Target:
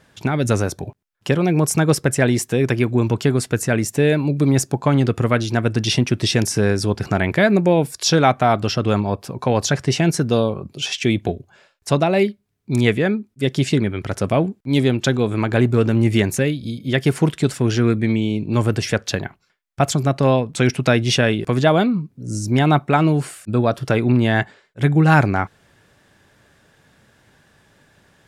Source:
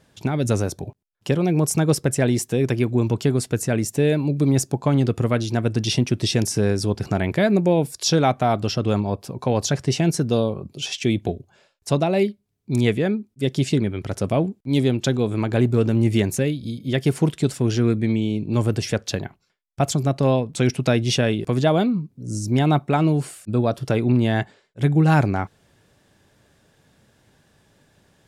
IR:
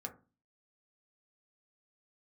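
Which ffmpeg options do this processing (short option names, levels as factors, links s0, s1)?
-af "equalizer=f=1600:w=0.87:g=6,volume=1.26"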